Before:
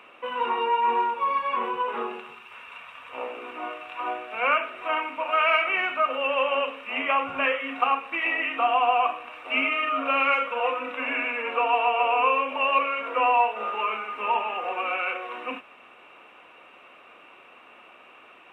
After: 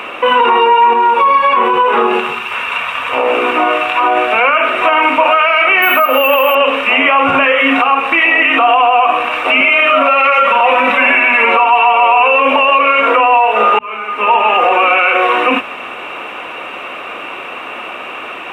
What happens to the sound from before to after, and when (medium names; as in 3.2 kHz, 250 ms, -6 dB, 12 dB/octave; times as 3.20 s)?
0.93–4.17 s: compression 5:1, threshold -32 dBFS
5.82–6.55 s: careless resampling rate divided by 3×, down none, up hold
9.60–12.40 s: comb 5.2 ms, depth 85%
13.79–14.92 s: fade in
whole clip: hum notches 60/120/180/240 Hz; compression, threshold -25 dBFS; loudness maximiser +26 dB; trim -1 dB